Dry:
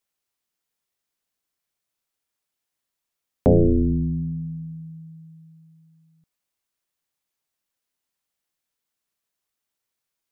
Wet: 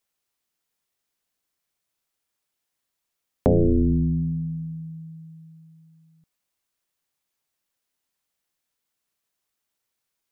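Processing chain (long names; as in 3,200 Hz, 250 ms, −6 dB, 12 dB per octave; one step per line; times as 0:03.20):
downward compressor 3 to 1, threshold −19 dBFS, peak gain reduction 5.5 dB
level +2 dB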